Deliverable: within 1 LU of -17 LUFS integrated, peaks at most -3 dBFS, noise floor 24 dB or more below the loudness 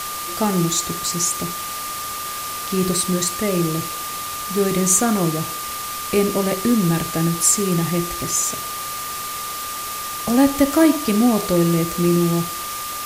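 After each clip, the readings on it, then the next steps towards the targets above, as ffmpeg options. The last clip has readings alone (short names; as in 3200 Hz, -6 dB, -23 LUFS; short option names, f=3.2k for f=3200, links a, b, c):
steady tone 1200 Hz; tone level -29 dBFS; noise floor -28 dBFS; noise floor target -44 dBFS; loudness -20.0 LUFS; peak -2.5 dBFS; loudness target -17.0 LUFS
-> -af "bandreject=f=1.2k:w=30"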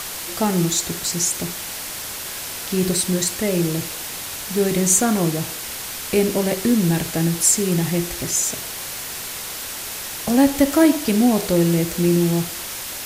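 steady tone none; noise floor -31 dBFS; noise floor target -45 dBFS
-> -af "afftdn=nr=14:nf=-31"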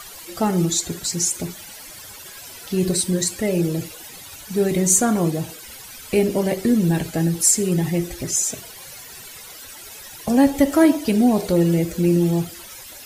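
noise floor -40 dBFS; noise floor target -44 dBFS
-> -af "afftdn=nr=6:nf=-40"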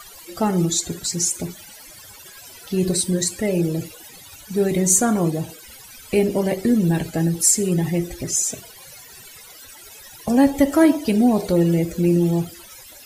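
noise floor -43 dBFS; noise floor target -44 dBFS
-> -af "afftdn=nr=6:nf=-43"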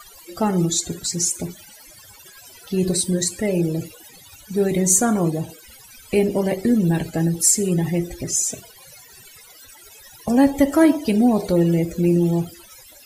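noise floor -46 dBFS; loudness -20.0 LUFS; peak -2.5 dBFS; loudness target -17.0 LUFS
-> -af "volume=3dB,alimiter=limit=-3dB:level=0:latency=1"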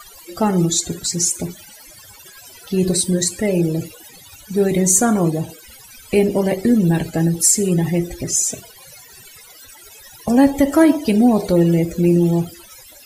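loudness -17.0 LUFS; peak -3.0 dBFS; noise floor -43 dBFS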